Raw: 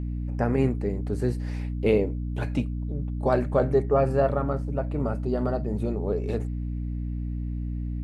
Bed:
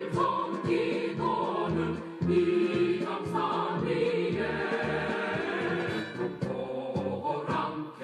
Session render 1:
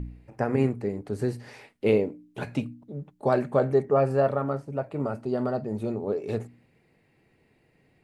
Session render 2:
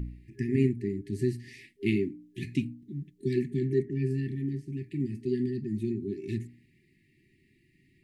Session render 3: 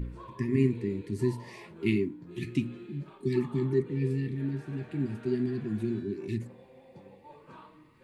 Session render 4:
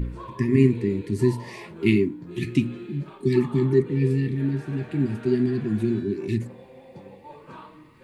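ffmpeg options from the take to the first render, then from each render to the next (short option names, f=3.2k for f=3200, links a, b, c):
-af "bandreject=f=60:t=h:w=4,bandreject=f=120:t=h:w=4,bandreject=f=180:t=h:w=4,bandreject=f=240:t=h:w=4,bandreject=f=300:t=h:w=4"
-af "afftfilt=real='re*(1-between(b*sr/4096,400,1700))':imag='im*(1-between(b*sr/4096,400,1700))':win_size=4096:overlap=0.75,adynamicequalizer=threshold=0.00447:dfrequency=1600:dqfactor=0.7:tfrequency=1600:tqfactor=0.7:attack=5:release=100:ratio=0.375:range=3:mode=cutabove:tftype=highshelf"
-filter_complex "[1:a]volume=-20.5dB[a];[0:a][a]amix=inputs=2:normalize=0"
-af "volume=7.5dB"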